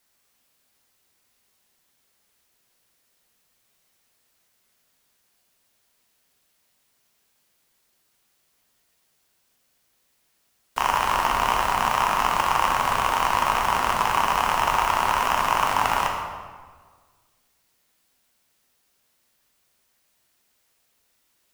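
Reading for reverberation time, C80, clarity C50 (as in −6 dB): 1.6 s, 4.5 dB, 2.5 dB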